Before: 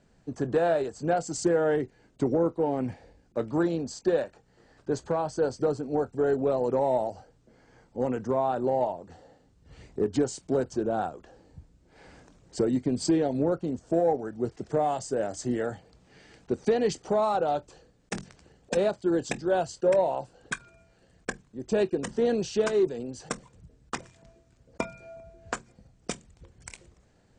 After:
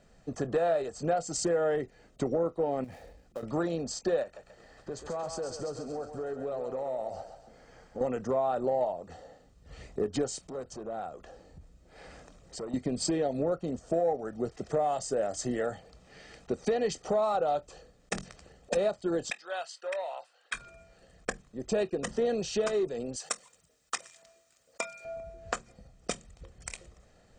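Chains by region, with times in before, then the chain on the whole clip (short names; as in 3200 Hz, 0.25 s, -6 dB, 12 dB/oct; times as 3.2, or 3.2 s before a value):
2.84–3.43 switching dead time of 0.082 ms + compressor 12:1, threshold -37 dBFS
4.23–8.01 compressor, threshold -35 dBFS + thinning echo 0.134 s, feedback 52%, high-pass 570 Hz, level -6 dB
10.44–12.74 compressor 2:1, threshold -46 dBFS + core saturation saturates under 420 Hz
19.3–20.54 HPF 1500 Hz + bell 7100 Hz -10.5 dB 1.1 oct
23.16–25.05 HPF 1400 Hz 6 dB/oct + high shelf 7900 Hz +11.5 dB
whole clip: bell 110 Hz -7 dB 1.1 oct; comb 1.6 ms, depth 40%; compressor 2:1, threshold -33 dBFS; gain +3 dB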